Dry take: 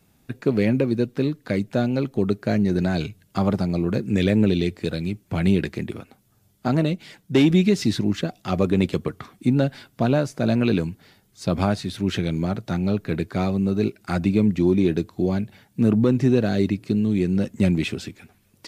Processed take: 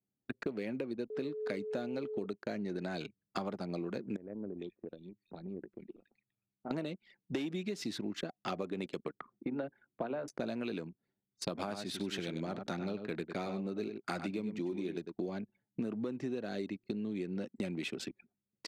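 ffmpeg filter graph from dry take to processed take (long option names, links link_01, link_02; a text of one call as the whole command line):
ffmpeg -i in.wav -filter_complex "[0:a]asettb=1/sr,asplit=3[link_01][link_02][link_03];[link_01]atrim=end=1.104[link_04];[link_02]atrim=start=1.1:end=2.26,asetpts=PTS-STARTPTS,afade=type=in:duration=0.004:curve=qsin,afade=type=out:start_time=1.156:duration=0.004:curve=qsin,highshelf=frequency=7900:gain=3.5,aeval=exprs='val(0)+0.0447*sin(2*PI*430*n/s)':channel_layout=same[link_05];[link_03]atrim=start=2.256[link_06];[link_04][link_05]acrossfade=duration=0.004:curve1=hsin:curve2=qsin[link_07];[link_07][link_06]acrossfade=duration=0.004:curve1=qsin:curve2=hsin,asettb=1/sr,asplit=3[link_08][link_09][link_10];[link_08]atrim=end=4.164[link_11];[link_09]atrim=start=4.16:end=6.71,asetpts=PTS-STARTPTS,afade=type=in:duration=0.004:curve=qsin,afade=type=out:start_time=2.546:duration=0.004:curve=qsin,highpass=42,acompressor=threshold=-45dB:ratio=2:attack=3.2:release=140:knee=1:detection=peak,acrossover=split=1800[link_12][link_13];[link_13]adelay=420[link_14];[link_12][link_14]amix=inputs=2:normalize=0,atrim=end_sample=112455[link_15];[link_10]atrim=start=6.706[link_16];[link_11][link_15]acrossfade=duration=0.004:curve1=hsin:curve2=qsin[link_17];[link_17][link_16]acrossfade=duration=0.004:curve1=qsin:curve2=hsin,asettb=1/sr,asplit=3[link_18][link_19][link_20];[link_18]atrim=end=9.114[link_21];[link_19]atrim=start=9.11:end=10.28,asetpts=PTS-STARTPTS,afade=type=in:duration=0.004:curve=qsin,afade=type=out:start_time=1.166:duration=0.004:curve=qsin,lowpass=2100,bandreject=frequency=60:width_type=h:width=6,bandreject=frequency=120:width_type=h:width=6,bandreject=frequency=180:width_type=h:width=6,bandreject=frequency=240:width_type=h:width=6,bandreject=frequency=300:width_type=h:width=6,bandreject=frequency=360:width_type=h:width=6,bandreject=frequency=420:width_type=h:width=6,acrossover=split=140|290[link_22][link_23][link_24];[link_22]acompressor=threshold=-35dB:ratio=4[link_25];[link_23]acompressor=threshold=-36dB:ratio=4[link_26];[link_24]acompressor=threshold=-22dB:ratio=4[link_27];[link_25][link_26][link_27]amix=inputs=3:normalize=0[link_28];[link_20]atrim=start=10.276[link_29];[link_21][link_28]acrossfade=duration=0.004:curve1=hsin:curve2=qsin[link_30];[link_30][link_29]acrossfade=duration=0.004:curve1=qsin:curve2=hsin,asettb=1/sr,asplit=3[link_31][link_32][link_33];[link_31]atrim=end=11.494[link_34];[link_32]atrim=start=11.49:end=15.3,asetpts=PTS-STARTPTS,afade=type=in:duration=0.004:curve=qsin,afade=type=out:start_time=3.806:duration=0.004:curve=qsin,highshelf=frequency=4300:gain=3,aecho=1:1:99:0.376,atrim=end_sample=168021[link_35];[link_33]atrim=start=15.296[link_36];[link_34][link_35]acrossfade=duration=0.004:curve1=hsin:curve2=qsin[link_37];[link_37][link_36]acrossfade=duration=0.004:curve1=qsin:curve2=hsin,highpass=260,anlmdn=1.58,acompressor=threshold=-33dB:ratio=12,volume=-1dB" out.wav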